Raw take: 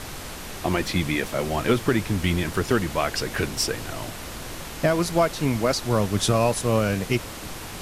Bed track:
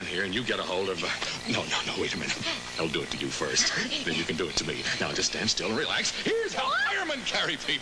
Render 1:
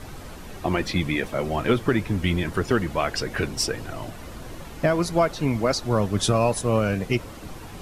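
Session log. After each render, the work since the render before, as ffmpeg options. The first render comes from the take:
-af "afftdn=nr=10:nf=-36"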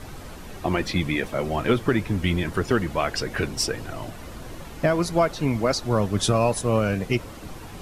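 -af anull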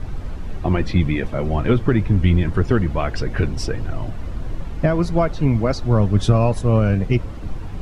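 -af "aemphasis=mode=reproduction:type=bsi"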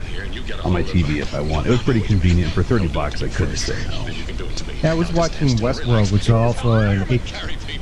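-filter_complex "[1:a]volume=0.708[s0];[0:a][s0]amix=inputs=2:normalize=0"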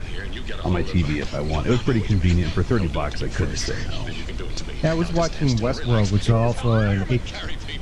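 -af "volume=0.708"

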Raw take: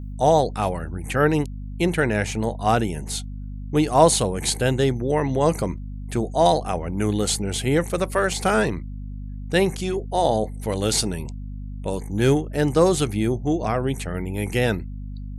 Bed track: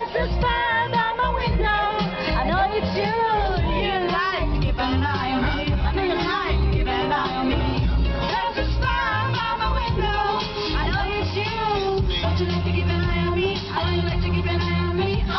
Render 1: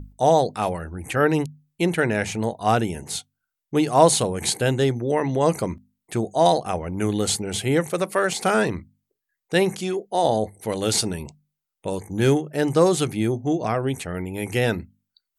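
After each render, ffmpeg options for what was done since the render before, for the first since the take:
-af "bandreject=f=50:t=h:w=6,bandreject=f=100:t=h:w=6,bandreject=f=150:t=h:w=6,bandreject=f=200:t=h:w=6,bandreject=f=250:t=h:w=6"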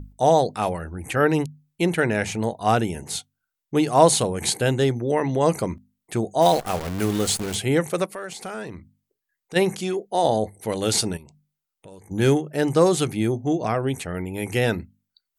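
-filter_complex "[0:a]asplit=3[s0][s1][s2];[s0]afade=t=out:st=6.41:d=0.02[s3];[s1]acrusher=bits=6:dc=4:mix=0:aa=0.000001,afade=t=in:st=6.41:d=0.02,afade=t=out:st=7.54:d=0.02[s4];[s2]afade=t=in:st=7.54:d=0.02[s5];[s3][s4][s5]amix=inputs=3:normalize=0,asplit=3[s6][s7][s8];[s6]afade=t=out:st=8.05:d=0.02[s9];[s7]acompressor=threshold=0.01:ratio=2:attack=3.2:release=140:knee=1:detection=peak,afade=t=in:st=8.05:d=0.02,afade=t=out:st=9.55:d=0.02[s10];[s8]afade=t=in:st=9.55:d=0.02[s11];[s9][s10][s11]amix=inputs=3:normalize=0,asettb=1/sr,asplit=3[s12][s13][s14];[s12]atrim=end=11.174[s15];[s13]atrim=start=11.17:end=12.11,asetpts=PTS-STARTPTS,afade=t=in:d=0.004:c=qsin,afade=t=out:st=0.936:d=0.004:c=qsin,acompressor=threshold=0.00501:ratio=3:attack=3.2:release=140:knee=1:detection=peak[s16];[s14]atrim=start=12.106[s17];[s15][s16]acrossfade=d=0.004:c1=hsin:c2=qsin[s18];[s18][s17]acrossfade=d=0.004:c1=qsin:c2=hsin"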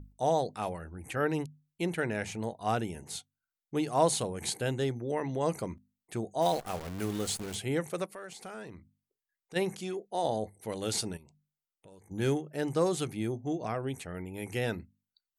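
-af "volume=0.299"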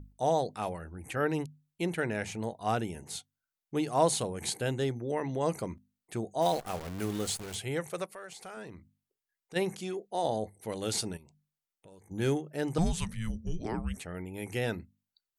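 -filter_complex "[0:a]asettb=1/sr,asplit=3[s0][s1][s2];[s0]atrim=end=7.304[s3];[s1]atrim=start=7.3:end=8.57,asetpts=PTS-STARTPTS,afade=t=in:d=0.004:c=qsin,afade=t=out:st=1.266:d=0.004:c=qsin,equalizer=f=250:t=o:w=1:g=-7.5[s4];[s2]atrim=start=8.566[s5];[s3][s4]acrossfade=d=0.004:c1=hsin:c2=qsin[s6];[s6][s5]acrossfade=d=0.004:c1=qsin:c2=hsin,asettb=1/sr,asplit=3[s7][s8][s9];[s7]atrim=end=12.784[s10];[s8]atrim=start=12.78:end=13.97,asetpts=PTS-STARTPTS,afade=t=in:d=0.004:c=qsin,afade=t=out:st=1.186:d=0.004:c=qsin,afreqshift=-330[s11];[s9]atrim=start=13.966[s12];[s10][s11]acrossfade=d=0.004:c1=hsin:c2=qsin[s13];[s13][s12]acrossfade=d=0.004:c1=qsin:c2=hsin"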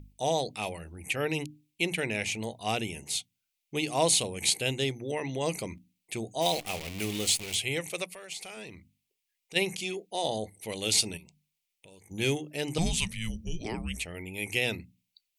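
-af "highshelf=f=1900:t=q:w=3:g=7.5,bandreject=f=60:t=h:w=6,bandreject=f=120:t=h:w=6,bandreject=f=180:t=h:w=6,bandreject=f=240:t=h:w=6,bandreject=f=300:t=h:w=6"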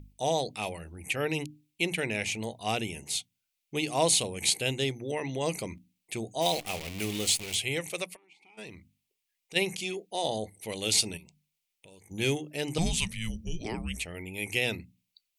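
-filter_complex "[0:a]asplit=3[s0][s1][s2];[s0]afade=t=out:st=8.15:d=0.02[s3];[s1]asplit=3[s4][s5][s6];[s4]bandpass=f=300:t=q:w=8,volume=1[s7];[s5]bandpass=f=870:t=q:w=8,volume=0.501[s8];[s6]bandpass=f=2240:t=q:w=8,volume=0.355[s9];[s7][s8][s9]amix=inputs=3:normalize=0,afade=t=in:st=8.15:d=0.02,afade=t=out:st=8.57:d=0.02[s10];[s2]afade=t=in:st=8.57:d=0.02[s11];[s3][s10][s11]amix=inputs=3:normalize=0"

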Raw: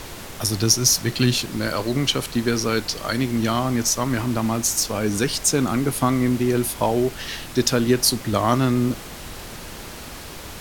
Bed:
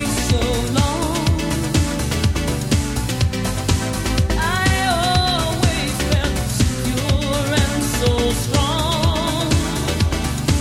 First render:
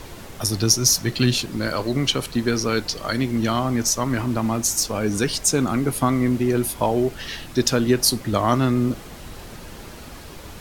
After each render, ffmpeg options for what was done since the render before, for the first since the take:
-af "afftdn=nr=6:nf=-37"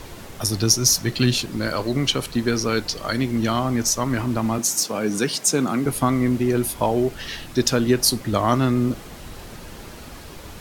-filter_complex "[0:a]asettb=1/sr,asplit=3[s0][s1][s2];[s0]atrim=end=4.584[s3];[s1]atrim=start=4.58:end=5.86,asetpts=PTS-STARTPTS,afade=t=in:d=0.004:c=qsin,afade=t=out:st=1.276:d=0.004:c=qsin,highpass=f=140:w=0.5412,highpass=f=140:w=1.3066[s4];[s2]atrim=start=5.856[s5];[s3][s4]acrossfade=d=0.004:c1=hsin:c2=qsin[s6];[s6][s5]acrossfade=d=0.004:c1=qsin:c2=hsin"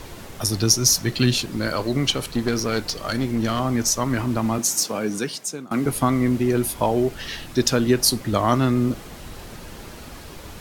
-filter_complex "[0:a]asettb=1/sr,asplit=3[s0][s1][s2];[s0]atrim=end=2.104[s3];[s1]atrim=start=2.1:end=3.6,asetpts=PTS-STARTPTS,afade=t=in:d=0.004:c=qsin,afade=t=out:st=1.496:d=0.004:c=qsin,aeval=exprs='clip(val(0),-1,0.0794)':c=same[s4];[s2]atrim=start=3.596[s5];[s3][s4]acrossfade=d=0.004:c1=hsin:c2=qsin[s6];[s6][s5]acrossfade=d=0.004:c1=qsin:c2=hsin,asplit=2[s7][s8];[s7]atrim=end=5.71,asetpts=PTS-STARTPTS,afade=t=out:st=4.89:d=0.82:silence=0.0794328[s9];[s8]atrim=start=5.71,asetpts=PTS-STARTPTS,afade=t=in:d=0.004:c=hsin:silence=0.0794328[s10];[s9][s10]concat=n=2:v=0:a=1"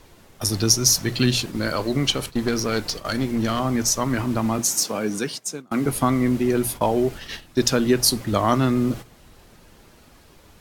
-af "agate=range=0.251:threshold=0.0282:ratio=16:detection=peak,bandreject=f=60:t=h:w=6,bandreject=f=120:t=h:w=6"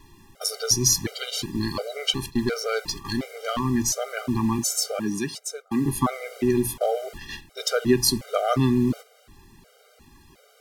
-af "afftfilt=real='re*gt(sin(2*PI*1.4*pts/sr)*(1-2*mod(floor(b*sr/1024/400),2)),0)':imag='im*gt(sin(2*PI*1.4*pts/sr)*(1-2*mod(floor(b*sr/1024/400),2)),0)':win_size=1024:overlap=0.75"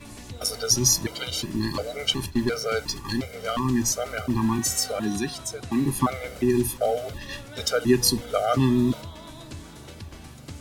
-filter_complex "[1:a]volume=0.075[s0];[0:a][s0]amix=inputs=2:normalize=0"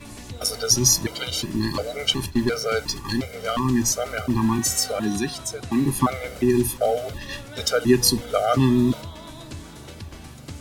-af "volume=1.33"

